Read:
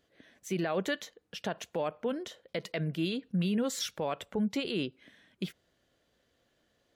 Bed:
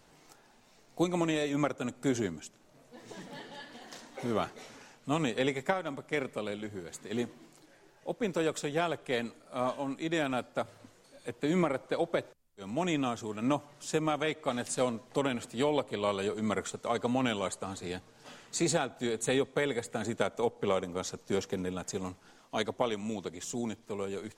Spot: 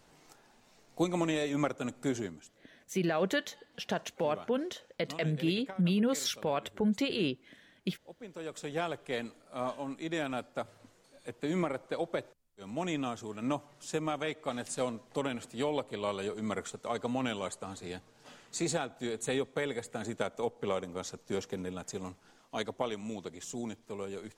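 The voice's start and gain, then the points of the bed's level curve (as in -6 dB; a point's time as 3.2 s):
2.45 s, +1.5 dB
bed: 1.99 s -1 dB
2.83 s -15 dB
8.3 s -15 dB
8.72 s -3.5 dB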